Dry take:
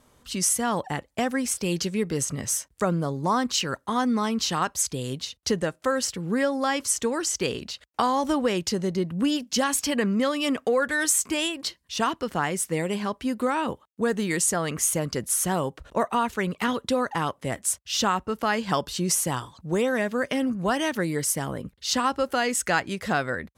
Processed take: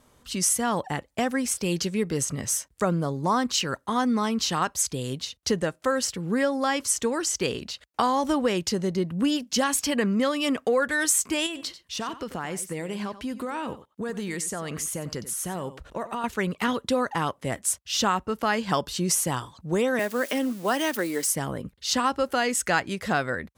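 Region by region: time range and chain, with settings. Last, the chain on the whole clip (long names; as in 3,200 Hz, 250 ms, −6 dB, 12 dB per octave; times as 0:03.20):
0:11.46–0:16.24: downward compressor 4 to 1, threshold −28 dBFS + single-tap delay 92 ms −14 dB
0:19.99–0:21.27: spike at every zero crossing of −30 dBFS + high-pass filter 230 Hz 24 dB per octave
whole clip: no processing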